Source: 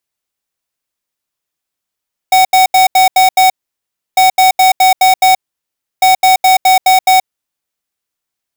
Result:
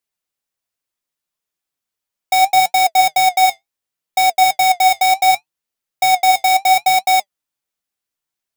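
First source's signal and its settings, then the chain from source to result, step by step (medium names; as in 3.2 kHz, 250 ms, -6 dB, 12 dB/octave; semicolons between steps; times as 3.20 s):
beep pattern square 750 Hz, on 0.13 s, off 0.08 s, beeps 6, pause 0.67 s, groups 3, -7 dBFS
flange 0.7 Hz, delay 4.1 ms, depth 6.5 ms, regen +62%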